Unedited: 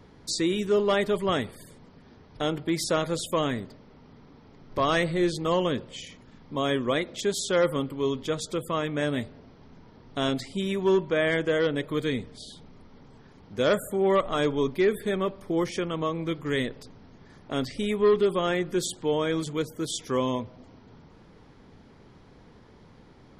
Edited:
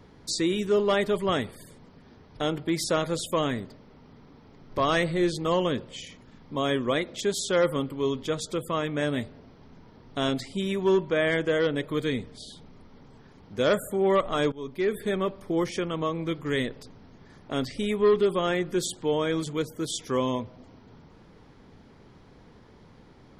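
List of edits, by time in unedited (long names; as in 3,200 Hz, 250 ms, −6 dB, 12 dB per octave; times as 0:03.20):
0:14.52–0:15.04: fade in, from −19.5 dB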